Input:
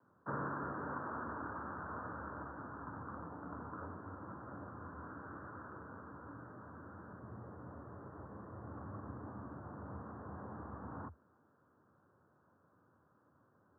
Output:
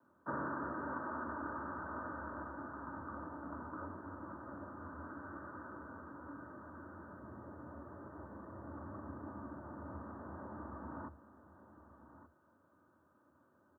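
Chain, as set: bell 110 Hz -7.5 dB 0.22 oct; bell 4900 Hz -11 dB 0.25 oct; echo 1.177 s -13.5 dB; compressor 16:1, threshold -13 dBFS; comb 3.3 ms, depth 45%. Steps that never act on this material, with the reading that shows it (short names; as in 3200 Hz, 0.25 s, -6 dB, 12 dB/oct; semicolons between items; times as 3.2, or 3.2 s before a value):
bell 4900 Hz: input band ends at 1800 Hz; compressor, threshold -13 dBFS: input peak -28.0 dBFS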